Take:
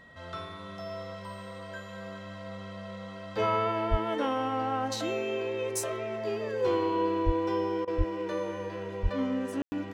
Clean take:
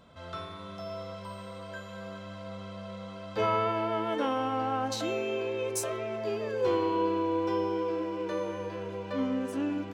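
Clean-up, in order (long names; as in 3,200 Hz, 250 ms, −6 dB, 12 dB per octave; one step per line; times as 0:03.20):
notch filter 1,900 Hz, Q 30
high-pass at the plosives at 0:03.90/0:07.25/0:07.97/0:09.02
ambience match 0:09.62–0:09.72
repair the gap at 0:07.85, 24 ms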